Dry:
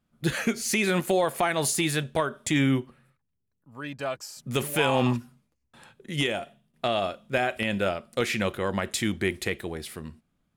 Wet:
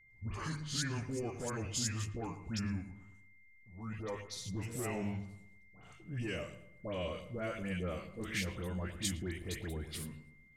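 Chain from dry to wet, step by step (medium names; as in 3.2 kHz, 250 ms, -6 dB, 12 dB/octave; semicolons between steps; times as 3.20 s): pitch bend over the whole clip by -7 st ending unshifted; tilt EQ -4.5 dB/octave; hum notches 50/100/150 Hz; compression 4:1, threshold -25 dBFS, peak gain reduction 13 dB; transient shaper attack -7 dB, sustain +4 dB; pre-emphasis filter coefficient 0.9; phase dispersion highs, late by 106 ms, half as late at 1.6 kHz; whistle 2.1 kHz -70 dBFS; filtered feedback delay 112 ms, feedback 44%, low-pass 1.5 kHz, level -11.5 dB; trim +8.5 dB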